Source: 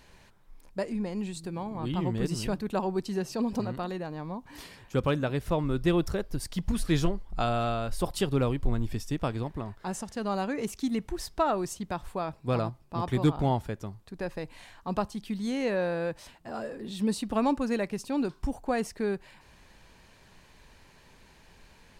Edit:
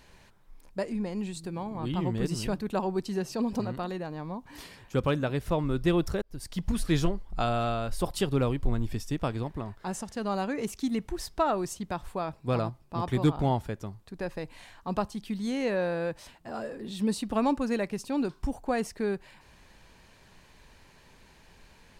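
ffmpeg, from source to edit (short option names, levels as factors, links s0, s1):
-filter_complex "[0:a]asplit=2[s0][s1];[s0]atrim=end=6.22,asetpts=PTS-STARTPTS,afade=t=out:st=6.216:d=0.004:c=hsin[s2];[s1]atrim=start=6.22,asetpts=PTS-STARTPTS,afade=t=in:d=0.51:c=qsin[s3];[s2][s3]concat=n=2:v=0:a=1"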